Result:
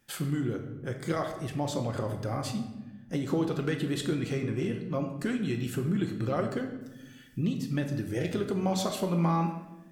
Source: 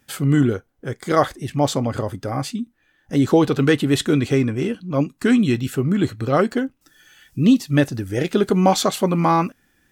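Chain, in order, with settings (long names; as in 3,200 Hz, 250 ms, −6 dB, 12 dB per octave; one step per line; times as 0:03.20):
downward compressor, threshold −20 dBFS, peak gain reduction 10.5 dB
rectangular room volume 510 cubic metres, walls mixed, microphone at 0.86 metres
level −7.5 dB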